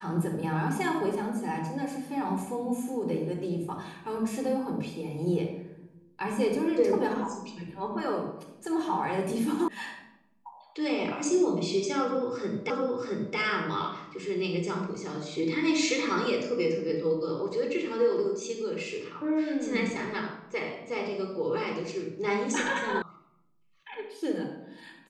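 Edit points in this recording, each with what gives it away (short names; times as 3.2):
9.68 sound cut off
12.7 repeat of the last 0.67 s
23.02 sound cut off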